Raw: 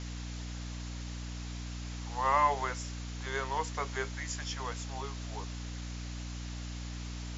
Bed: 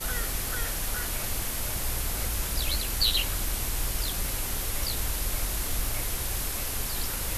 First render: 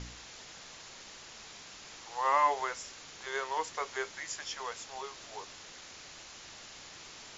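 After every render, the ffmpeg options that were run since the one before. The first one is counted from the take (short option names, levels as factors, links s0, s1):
-af "bandreject=f=60:t=h:w=4,bandreject=f=120:t=h:w=4,bandreject=f=180:t=h:w=4,bandreject=f=240:t=h:w=4,bandreject=f=300:t=h:w=4"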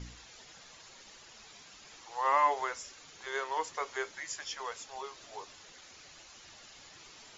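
-af "afftdn=nr=8:nf=-50"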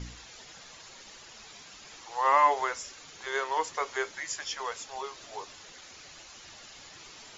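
-af "volume=1.68"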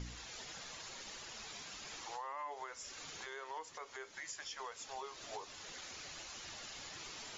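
-af "acompressor=threshold=0.0112:ratio=2,alimiter=level_in=3.76:limit=0.0631:level=0:latency=1:release=353,volume=0.266"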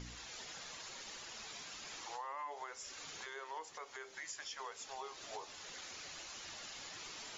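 -af "lowshelf=f=150:g=-5,bandreject=f=65.59:t=h:w=4,bandreject=f=131.18:t=h:w=4,bandreject=f=196.77:t=h:w=4,bandreject=f=262.36:t=h:w=4,bandreject=f=327.95:t=h:w=4,bandreject=f=393.54:t=h:w=4,bandreject=f=459.13:t=h:w=4,bandreject=f=524.72:t=h:w=4,bandreject=f=590.31:t=h:w=4,bandreject=f=655.9:t=h:w=4,bandreject=f=721.49:t=h:w=4,bandreject=f=787.08:t=h:w=4,bandreject=f=852.67:t=h:w=4"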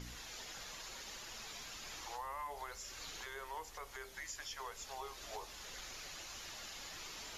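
-filter_complex "[1:a]volume=0.0316[s0];[0:a][s0]amix=inputs=2:normalize=0"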